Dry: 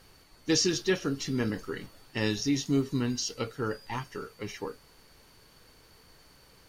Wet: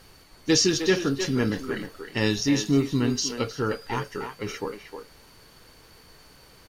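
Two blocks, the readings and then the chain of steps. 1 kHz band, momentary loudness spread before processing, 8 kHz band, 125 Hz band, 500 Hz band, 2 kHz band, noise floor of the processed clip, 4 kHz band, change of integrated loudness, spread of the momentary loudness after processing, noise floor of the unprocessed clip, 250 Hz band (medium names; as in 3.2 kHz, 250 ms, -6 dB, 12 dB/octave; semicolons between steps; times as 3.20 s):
+6.0 dB, 14 LU, +5.0 dB, +5.0 dB, +5.5 dB, +5.5 dB, -53 dBFS, +5.0 dB, +5.5 dB, 14 LU, -58 dBFS, +5.5 dB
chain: speakerphone echo 310 ms, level -7 dB; trim +5 dB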